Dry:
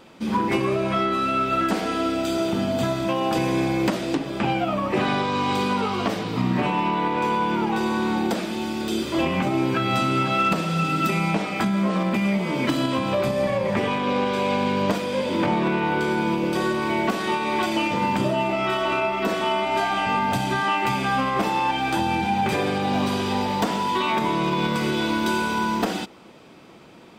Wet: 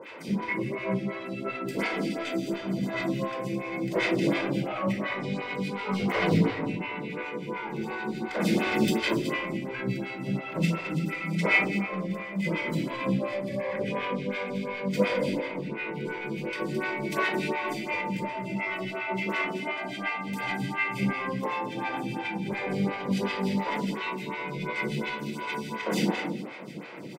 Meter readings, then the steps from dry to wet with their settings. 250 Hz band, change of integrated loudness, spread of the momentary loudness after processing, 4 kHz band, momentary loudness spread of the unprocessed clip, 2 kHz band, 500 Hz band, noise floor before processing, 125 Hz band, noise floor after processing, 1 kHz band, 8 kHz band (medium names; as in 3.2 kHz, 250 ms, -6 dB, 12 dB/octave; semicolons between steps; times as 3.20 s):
-6.0 dB, -6.5 dB, 8 LU, -8.5 dB, 2 LU, -3.0 dB, -6.5 dB, -33 dBFS, -4.5 dB, -38 dBFS, -11.5 dB, -8.0 dB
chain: high-pass 130 Hz 24 dB/octave; compressor with a negative ratio -28 dBFS, ratio -0.5; peaking EQ 2.1 kHz +12 dB 0.43 oct; harmonic tremolo 6.8 Hz, depth 100%, crossover 1.3 kHz; on a send: delay 216 ms -8.5 dB; on the sum: simulated room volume 2400 m³, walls furnished, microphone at 5 m; lamp-driven phase shifter 2.8 Hz